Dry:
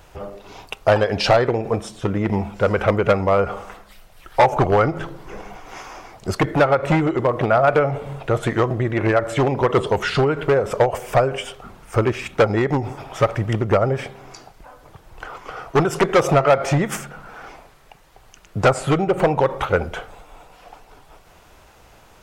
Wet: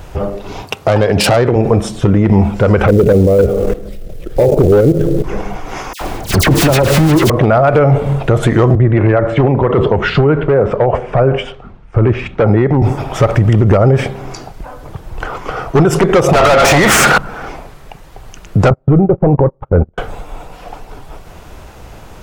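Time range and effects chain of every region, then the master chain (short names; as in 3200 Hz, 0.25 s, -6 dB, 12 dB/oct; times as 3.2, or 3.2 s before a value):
0.62–1.56 self-modulated delay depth 0.1 ms + HPF 80 Hz 24 dB/oct
2.88–5.24 resonant low shelf 660 Hz +11.5 dB, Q 3 + level quantiser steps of 14 dB + companded quantiser 6-bit
5.93–7.3 half-waves squared off + dispersion lows, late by 78 ms, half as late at 2000 Hz
8.75–12.82 LPF 2500 Hz + three-band expander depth 70%
16.33–17.18 low shelf 430 Hz -9 dB + compressor 5:1, threshold -28 dBFS + overdrive pedal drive 36 dB, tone 5600 Hz, clips at -9 dBFS
18.7–19.98 LPF 1100 Hz + low shelf 390 Hz +8.5 dB + gate -17 dBFS, range -44 dB
whole clip: low shelf 450 Hz +9 dB; maximiser +10.5 dB; gain -1 dB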